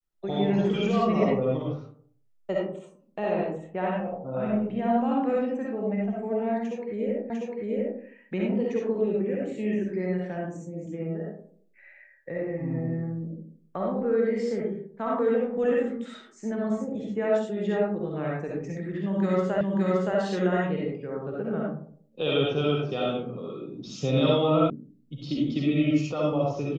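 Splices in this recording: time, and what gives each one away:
7.3 repeat of the last 0.7 s
19.61 repeat of the last 0.57 s
24.7 sound cut off

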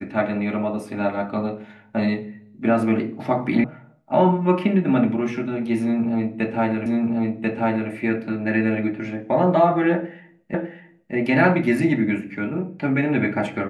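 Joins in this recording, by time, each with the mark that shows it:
3.64 sound cut off
6.86 repeat of the last 1.04 s
10.54 repeat of the last 0.6 s

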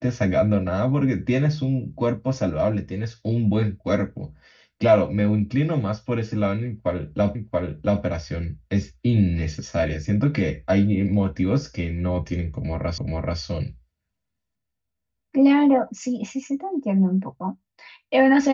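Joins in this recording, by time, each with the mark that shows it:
7.35 repeat of the last 0.68 s
12.98 repeat of the last 0.43 s

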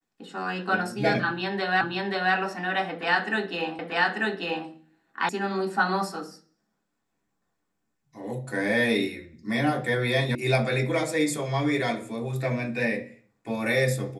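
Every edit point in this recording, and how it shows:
1.81 repeat of the last 0.53 s
3.79 repeat of the last 0.89 s
5.29 sound cut off
10.35 sound cut off

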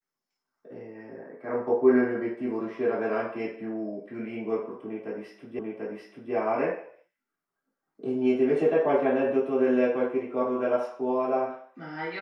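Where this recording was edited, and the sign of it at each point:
5.59 repeat of the last 0.74 s

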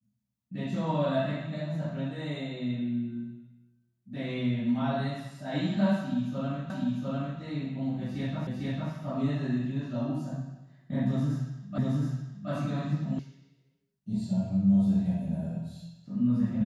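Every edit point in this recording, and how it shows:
6.7 repeat of the last 0.7 s
8.47 repeat of the last 0.45 s
11.78 repeat of the last 0.72 s
13.19 sound cut off

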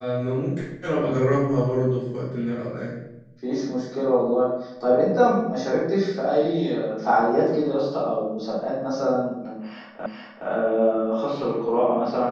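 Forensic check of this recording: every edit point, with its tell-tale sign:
10.06 repeat of the last 0.42 s

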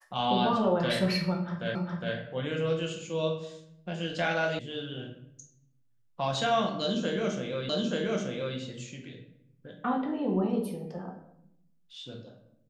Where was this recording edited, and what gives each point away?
1.75 repeat of the last 0.41 s
4.59 sound cut off
7.69 repeat of the last 0.88 s

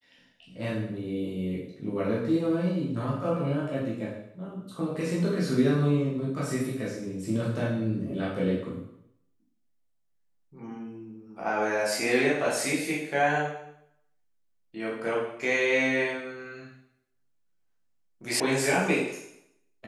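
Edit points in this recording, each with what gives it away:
18.4 sound cut off

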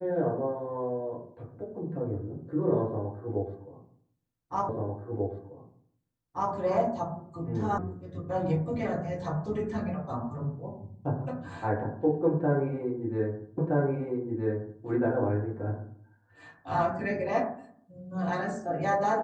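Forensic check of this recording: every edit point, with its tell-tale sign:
4.69 repeat of the last 1.84 s
7.78 sound cut off
13.58 repeat of the last 1.27 s

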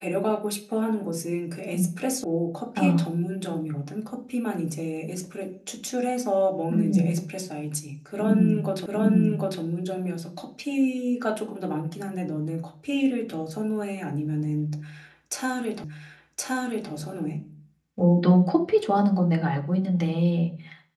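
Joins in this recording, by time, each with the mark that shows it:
2.24 sound cut off
8.86 repeat of the last 0.75 s
15.84 repeat of the last 1.07 s

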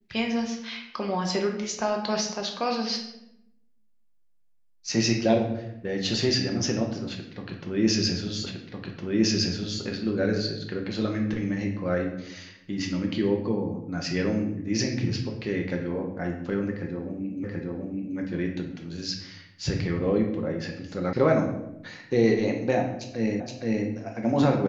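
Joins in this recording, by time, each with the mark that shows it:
8.46 repeat of the last 1.36 s
17.44 repeat of the last 0.73 s
21.13 sound cut off
23.4 repeat of the last 0.47 s

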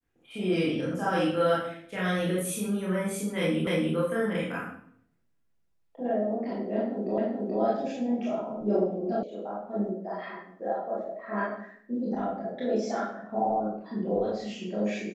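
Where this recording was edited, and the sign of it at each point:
3.67 repeat of the last 0.29 s
7.18 repeat of the last 0.43 s
9.23 sound cut off

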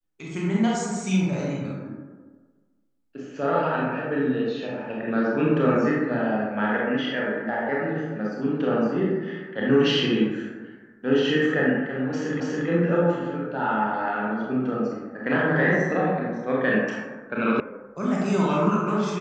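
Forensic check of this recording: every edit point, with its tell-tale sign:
12.4 repeat of the last 0.28 s
17.6 sound cut off

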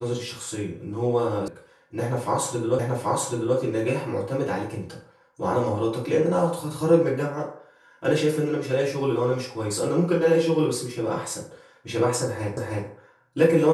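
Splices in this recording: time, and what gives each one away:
1.48 sound cut off
2.79 repeat of the last 0.78 s
12.57 repeat of the last 0.31 s

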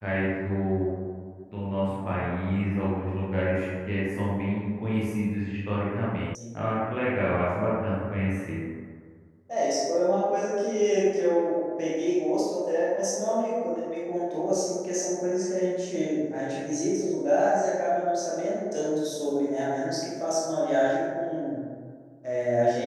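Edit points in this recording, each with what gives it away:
6.35 sound cut off

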